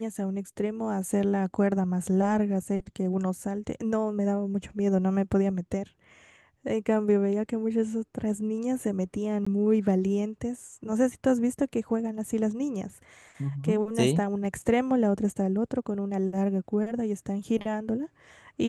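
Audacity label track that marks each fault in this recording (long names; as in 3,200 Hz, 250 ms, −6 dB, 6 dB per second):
9.450000	9.460000	drop-out 15 ms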